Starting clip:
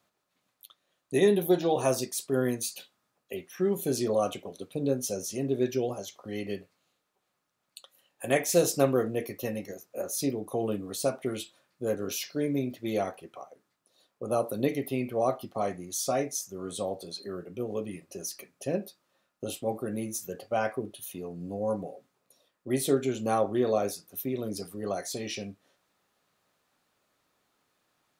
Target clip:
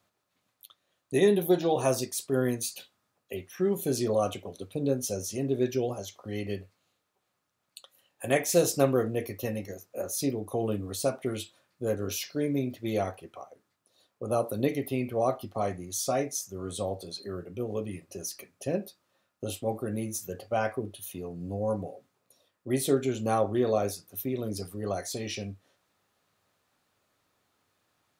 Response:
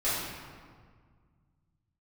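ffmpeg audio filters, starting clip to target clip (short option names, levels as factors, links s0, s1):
-af "equalizer=f=95:t=o:w=0.41:g=10.5"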